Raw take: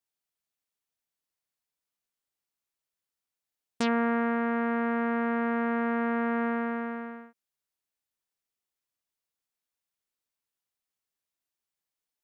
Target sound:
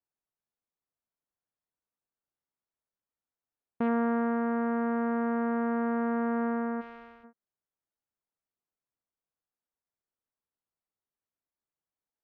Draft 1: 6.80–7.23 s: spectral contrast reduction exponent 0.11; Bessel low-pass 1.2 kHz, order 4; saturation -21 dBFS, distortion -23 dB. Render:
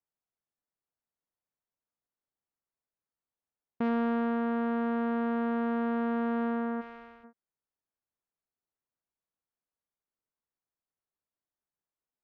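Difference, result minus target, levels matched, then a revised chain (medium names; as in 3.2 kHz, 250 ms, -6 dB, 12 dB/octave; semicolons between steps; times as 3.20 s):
saturation: distortion +17 dB
6.80–7.23 s: spectral contrast reduction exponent 0.11; Bessel low-pass 1.2 kHz, order 4; saturation -11.5 dBFS, distortion -40 dB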